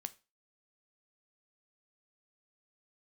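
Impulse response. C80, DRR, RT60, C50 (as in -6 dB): 26.0 dB, 11.5 dB, 0.30 s, 20.5 dB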